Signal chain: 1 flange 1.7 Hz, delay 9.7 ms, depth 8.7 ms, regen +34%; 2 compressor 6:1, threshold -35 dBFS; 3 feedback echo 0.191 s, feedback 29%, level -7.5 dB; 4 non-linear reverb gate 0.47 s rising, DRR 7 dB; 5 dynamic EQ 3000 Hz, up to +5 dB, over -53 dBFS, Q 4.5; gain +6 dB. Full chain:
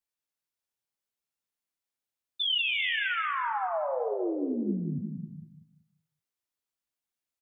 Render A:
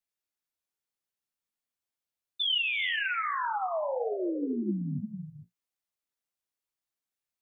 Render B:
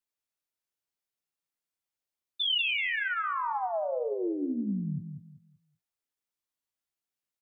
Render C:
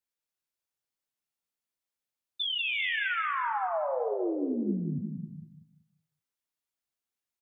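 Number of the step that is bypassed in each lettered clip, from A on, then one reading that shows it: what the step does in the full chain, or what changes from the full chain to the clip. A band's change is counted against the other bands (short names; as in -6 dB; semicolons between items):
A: 3, momentary loudness spread change -2 LU; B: 4, momentary loudness spread change -2 LU; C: 5, momentary loudness spread change -2 LU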